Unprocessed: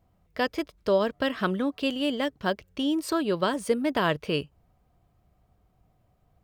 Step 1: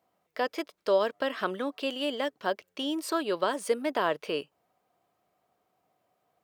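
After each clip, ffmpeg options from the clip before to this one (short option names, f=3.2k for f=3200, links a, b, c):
-filter_complex "[0:a]highpass=400,acrossover=split=1300[a][b];[b]alimiter=level_in=3dB:limit=-24dB:level=0:latency=1:release=46,volume=-3dB[c];[a][c]amix=inputs=2:normalize=0"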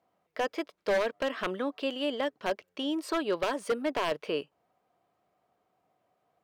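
-af "aemphasis=mode=reproduction:type=cd,aeval=exprs='0.0944*(abs(mod(val(0)/0.0944+3,4)-2)-1)':c=same"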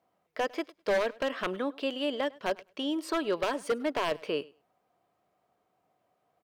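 -af "aecho=1:1:102|204:0.0708|0.0106"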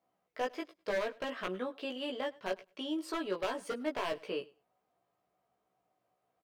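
-filter_complex "[0:a]asplit=2[a][b];[b]adelay=16,volume=-2.5dB[c];[a][c]amix=inputs=2:normalize=0,volume=-7.5dB"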